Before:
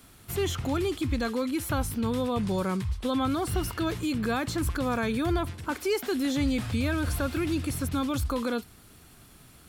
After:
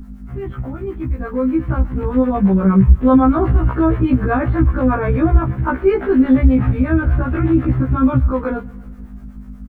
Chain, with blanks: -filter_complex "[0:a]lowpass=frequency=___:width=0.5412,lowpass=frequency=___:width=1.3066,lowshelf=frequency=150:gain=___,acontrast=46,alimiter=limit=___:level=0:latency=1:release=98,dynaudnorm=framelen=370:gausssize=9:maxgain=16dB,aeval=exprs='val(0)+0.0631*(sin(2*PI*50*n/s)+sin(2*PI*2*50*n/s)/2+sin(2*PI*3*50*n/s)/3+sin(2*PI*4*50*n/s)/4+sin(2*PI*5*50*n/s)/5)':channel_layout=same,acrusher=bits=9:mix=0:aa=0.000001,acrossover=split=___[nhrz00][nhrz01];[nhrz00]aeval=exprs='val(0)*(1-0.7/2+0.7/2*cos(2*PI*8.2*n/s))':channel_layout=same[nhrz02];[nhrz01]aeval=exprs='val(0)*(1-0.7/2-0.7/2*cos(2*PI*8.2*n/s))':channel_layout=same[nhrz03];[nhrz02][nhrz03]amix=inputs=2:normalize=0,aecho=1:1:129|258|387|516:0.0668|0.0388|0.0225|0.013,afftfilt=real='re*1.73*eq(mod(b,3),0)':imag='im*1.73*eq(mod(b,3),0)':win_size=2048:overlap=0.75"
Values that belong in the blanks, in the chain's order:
1.8k, 1.8k, 10, -14.5dB, 410